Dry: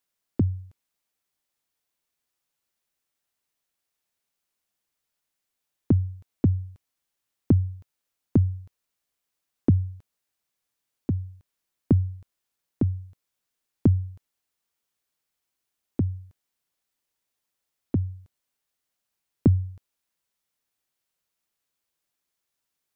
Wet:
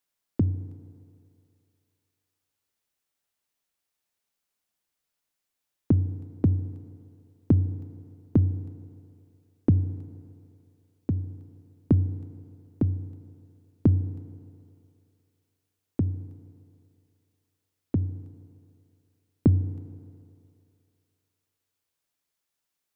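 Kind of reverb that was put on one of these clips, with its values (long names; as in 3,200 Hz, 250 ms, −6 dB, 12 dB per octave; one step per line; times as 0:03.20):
feedback delay network reverb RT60 2.7 s, low-frequency decay 0.75×, high-frequency decay 0.9×, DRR 13.5 dB
level −1 dB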